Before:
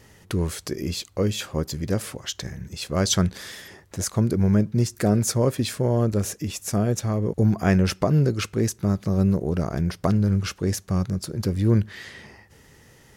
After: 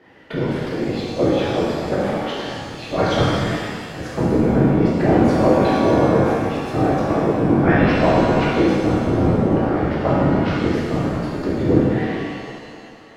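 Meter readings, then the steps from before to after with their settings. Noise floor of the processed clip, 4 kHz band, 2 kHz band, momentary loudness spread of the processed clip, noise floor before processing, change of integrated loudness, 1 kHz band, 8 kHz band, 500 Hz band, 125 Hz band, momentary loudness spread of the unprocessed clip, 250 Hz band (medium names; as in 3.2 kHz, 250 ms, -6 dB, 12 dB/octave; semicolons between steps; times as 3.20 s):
-39 dBFS, +1.0 dB, +10.0 dB, 11 LU, -54 dBFS, +5.5 dB, +13.0 dB, under -10 dB, +9.0 dB, +1.0 dB, 11 LU, +6.5 dB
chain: high-pass 220 Hz 24 dB/octave; band-stop 1.1 kHz; whisper effect; distance through air 400 m; pitch-shifted reverb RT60 1.9 s, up +7 st, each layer -8 dB, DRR -7.5 dB; trim +3 dB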